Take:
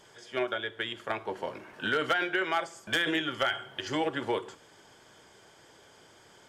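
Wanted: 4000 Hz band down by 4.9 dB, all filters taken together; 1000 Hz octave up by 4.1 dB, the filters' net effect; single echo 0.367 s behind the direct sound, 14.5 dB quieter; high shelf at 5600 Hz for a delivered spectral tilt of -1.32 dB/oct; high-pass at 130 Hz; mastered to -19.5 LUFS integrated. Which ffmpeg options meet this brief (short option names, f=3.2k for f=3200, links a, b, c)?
-af "highpass=130,equalizer=f=1k:t=o:g=6.5,equalizer=f=4k:t=o:g=-5,highshelf=f=5.6k:g=-7.5,aecho=1:1:367:0.188,volume=10.5dB"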